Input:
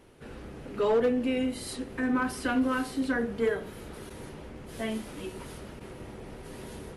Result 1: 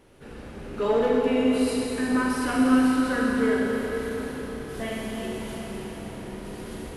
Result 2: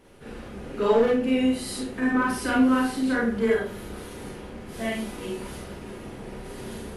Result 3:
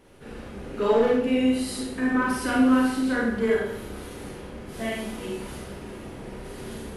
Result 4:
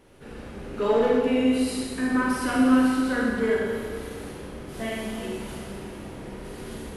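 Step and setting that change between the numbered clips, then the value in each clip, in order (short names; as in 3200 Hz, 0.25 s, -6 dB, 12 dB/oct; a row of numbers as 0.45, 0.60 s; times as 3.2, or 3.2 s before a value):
Schroeder reverb, RT60: 4.4, 0.33, 0.71, 1.8 s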